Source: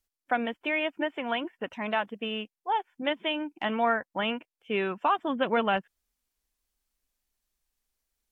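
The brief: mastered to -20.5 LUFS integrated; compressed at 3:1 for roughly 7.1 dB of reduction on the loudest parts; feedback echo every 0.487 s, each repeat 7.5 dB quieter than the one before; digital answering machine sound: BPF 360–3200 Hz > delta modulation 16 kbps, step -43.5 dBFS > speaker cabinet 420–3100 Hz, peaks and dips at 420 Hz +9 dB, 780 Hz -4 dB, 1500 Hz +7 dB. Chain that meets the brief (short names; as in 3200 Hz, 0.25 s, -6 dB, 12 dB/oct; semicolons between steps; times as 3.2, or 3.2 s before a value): compressor 3:1, threshold -30 dBFS; BPF 360–3200 Hz; feedback echo 0.487 s, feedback 42%, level -7.5 dB; delta modulation 16 kbps, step -43.5 dBFS; speaker cabinet 420–3100 Hz, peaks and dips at 420 Hz +9 dB, 780 Hz -4 dB, 1500 Hz +7 dB; gain +18.5 dB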